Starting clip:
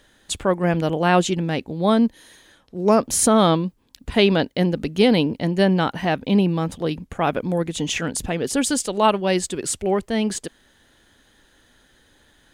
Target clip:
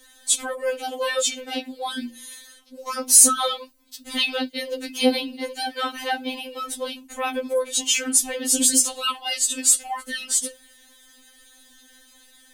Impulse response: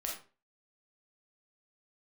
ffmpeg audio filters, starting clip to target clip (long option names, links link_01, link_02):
-filter_complex "[0:a]asplit=2[link_01][link_02];[link_02]acompressor=threshold=-24dB:ratio=6,volume=1dB[link_03];[link_01][link_03]amix=inputs=2:normalize=0,crystalizer=i=4.5:c=0,flanger=delay=8.2:depth=7.8:regen=-70:speed=0.27:shape=triangular,afftfilt=real='re*3.46*eq(mod(b,12),0)':imag='im*3.46*eq(mod(b,12),0)':win_size=2048:overlap=0.75,volume=-3dB"